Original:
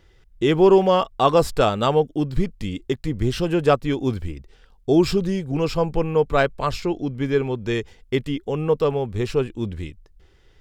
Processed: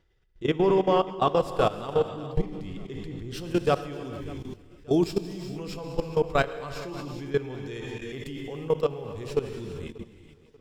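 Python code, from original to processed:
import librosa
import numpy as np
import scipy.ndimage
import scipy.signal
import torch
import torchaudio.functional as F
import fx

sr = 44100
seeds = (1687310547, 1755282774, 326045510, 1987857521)

y = fx.rev_gated(x, sr, seeds[0], gate_ms=480, shape='flat', drr_db=3.5)
y = fx.level_steps(y, sr, step_db=16)
y = fx.high_shelf(y, sr, hz=5300.0, db=fx.steps((0.0, -5.0), (3.33, 7.0)))
y = fx.echo_feedback(y, sr, ms=587, feedback_pct=35, wet_db=-21.5)
y = F.gain(torch.from_numpy(y), -4.0).numpy()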